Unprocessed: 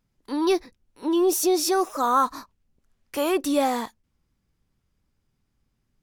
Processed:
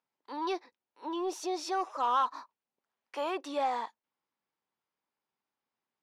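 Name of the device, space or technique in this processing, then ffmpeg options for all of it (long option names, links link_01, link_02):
intercom: -af "highpass=470,lowpass=4300,equalizer=frequency=910:width_type=o:width=0.55:gain=7,asoftclip=type=tanh:threshold=-13dB,volume=-8dB"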